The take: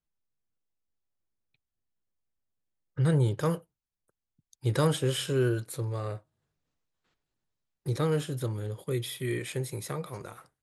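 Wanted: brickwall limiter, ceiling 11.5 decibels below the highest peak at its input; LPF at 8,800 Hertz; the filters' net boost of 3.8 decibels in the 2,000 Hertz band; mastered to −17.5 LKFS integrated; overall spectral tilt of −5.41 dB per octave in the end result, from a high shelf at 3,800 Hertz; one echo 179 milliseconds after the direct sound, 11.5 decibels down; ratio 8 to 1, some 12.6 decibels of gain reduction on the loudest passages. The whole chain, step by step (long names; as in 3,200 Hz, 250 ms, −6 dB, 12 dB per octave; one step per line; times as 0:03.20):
low-pass filter 8,800 Hz
parametric band 2,000 Hz +6 dB
high-shelf EQ 3,800 Hz −4 dB
downward compressor 8 to 1, threshold −34 dBFS
brickwall limiter −32.5 dBFS
single-tap delay 179 ms −11.5 dB
level +24.5 dB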